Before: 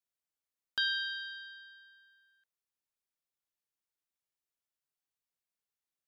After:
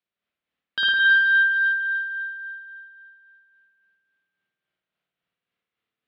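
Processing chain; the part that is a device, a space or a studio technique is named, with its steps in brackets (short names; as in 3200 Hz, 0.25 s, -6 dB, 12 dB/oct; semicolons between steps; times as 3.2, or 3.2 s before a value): combo amplifier with spring reverb and tremolo (spring tank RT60 2.6 s, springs 53 ms, chirp 60 ms, DRR -7 dB; tremolo 3.6 Hz, depth 40%; speaker cabinet 75–3900 Hz, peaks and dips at 86 Hz -8 dB, 200 Hz +5 dB, 870 Hz -7 dB); gain +8 dB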